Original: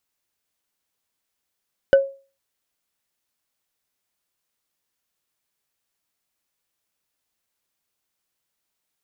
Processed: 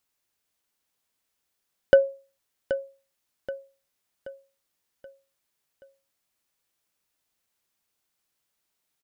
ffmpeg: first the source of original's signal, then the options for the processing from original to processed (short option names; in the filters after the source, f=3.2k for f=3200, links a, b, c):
-f lavfi -i "aevalsrc='0.473*pow(10,-3*t/0.35)*sin(2*PI*547*t)+0.15*pow(10,-3*t/0.104)*sin(2*PI*1508.1*t)+0.0473*pow(10,-3*t/0.046)*sin(2*PI*2956*t)+0.015*pow(10,-3*t/0.025)*sin(2*PI*4886.4*t)+0.00473*pow(10,-3*t/0.016)*sin(2*PI*7297*t)':d=0.45:s=44100"
-af "aecho=1:1:778|1556|2334|3112|3890:0.266|0.122|0.0563|0.0259|0.0119"